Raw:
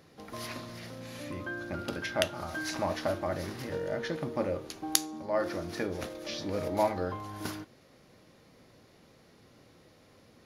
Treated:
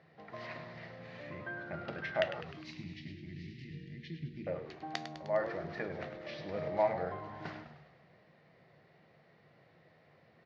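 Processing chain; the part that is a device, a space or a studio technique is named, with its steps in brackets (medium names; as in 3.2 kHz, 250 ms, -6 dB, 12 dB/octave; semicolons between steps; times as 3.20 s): 2.41–4.47 s: inverse Chebyshev band-stop 520–1500 Hz, stop band 40 dB; frequency-shifting delay pedal into a guitar cabinet (frequency-shifting echo 102 ms, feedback 59%, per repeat -80 Hz, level -10 dB; cabinet simulation 110–3900 Hz, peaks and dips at 150 Hz +8 dB, 270 Hz -9 dB, 690 Hz +8 dB, 1.9 kHz +8 dB, 3.4 kHz -4 dB); trim -6.5 dB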